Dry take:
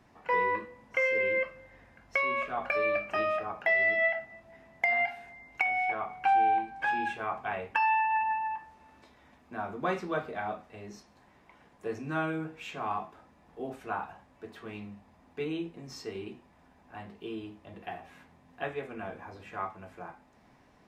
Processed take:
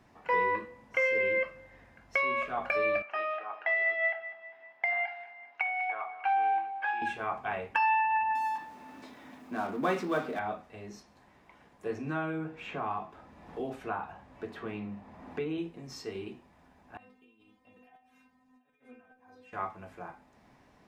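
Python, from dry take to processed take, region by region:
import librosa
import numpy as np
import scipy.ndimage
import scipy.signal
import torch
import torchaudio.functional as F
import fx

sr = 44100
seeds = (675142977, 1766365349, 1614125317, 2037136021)

y = fx.chain(x, sr, fx.highpass(hz=740.0, slope=12),
    fx.air_absorb(metres=250.0),
    fx.echo_feedback(ms=199, feedback_pct=50, wet_db=-15.5), at=(3.02, 7.02))
y = fx.chain(y, sr, fx.law_mismatch(coded='mu'),
    fx.highpass(hz=150.0, slope=12),
    fx.peak_eq(hz=270.0, db=9.0, octaves=0.35), at=(8.35, 10.39))
y = fx.chain(y, sr, fx.high_shelf(hz=4500.0, db=-10.5),
    fx.band_squash(depth_pct=70), at=(11.9, 15.58))
y = fx.chain(y, sr, fx.over_compress(threshold_db=-44.0, ratio=-1.0),
    fx.auto_swell(attack_ms=197.0),
    fx.stiff_resonator(f0_hz=250.0, decay_s=0.25, stiffness=0.002), at=(16.97, 19.53))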